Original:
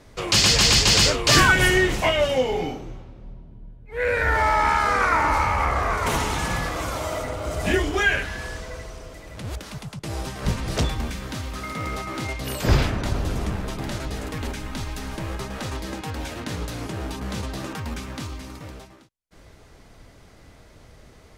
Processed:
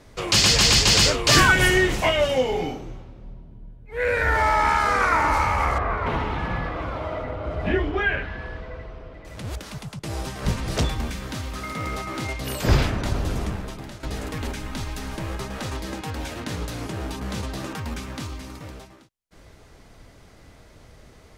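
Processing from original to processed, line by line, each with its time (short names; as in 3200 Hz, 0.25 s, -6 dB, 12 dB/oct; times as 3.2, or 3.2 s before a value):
5.78–9.25 air absorption 380 m
13.38–14.03 fade out, to -13.5 dB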